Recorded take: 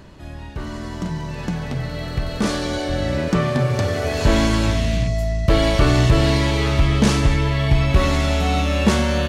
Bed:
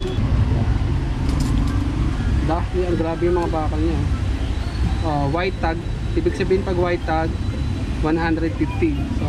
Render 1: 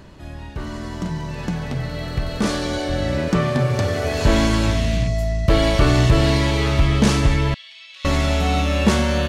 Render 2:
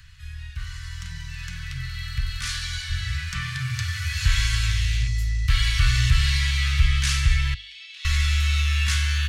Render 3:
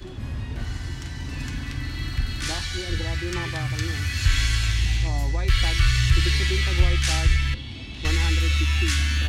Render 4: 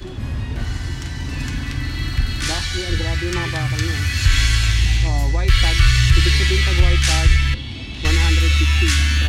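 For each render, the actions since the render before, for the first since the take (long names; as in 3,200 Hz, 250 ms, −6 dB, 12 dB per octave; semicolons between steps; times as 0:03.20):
0:07.54–0:08.05: four-pole ladder band-pass 4,000 Hz, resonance 35%
inverse Chebyshev band-stop filter 280–600 Hz, stop band 70 dB; mains-hum notches 50/100 Hz
mix in bed −14 dB
level +6 dB; brickwall limiter −3 dBFS, peak gain reduction 2.5 dB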